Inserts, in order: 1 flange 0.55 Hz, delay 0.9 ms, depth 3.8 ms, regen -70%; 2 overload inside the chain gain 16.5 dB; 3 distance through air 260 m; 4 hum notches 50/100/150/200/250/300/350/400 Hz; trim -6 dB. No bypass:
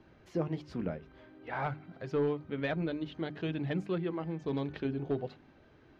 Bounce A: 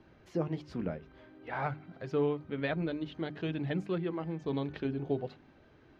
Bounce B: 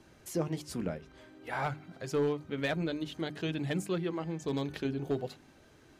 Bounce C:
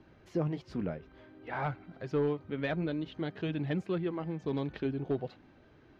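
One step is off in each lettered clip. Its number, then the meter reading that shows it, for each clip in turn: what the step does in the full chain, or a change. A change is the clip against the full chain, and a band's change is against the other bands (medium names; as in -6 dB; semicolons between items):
2, distortion -23 dB; 3, 4 kHz band +5.5 dB; 4, crest factor change -1.5 dB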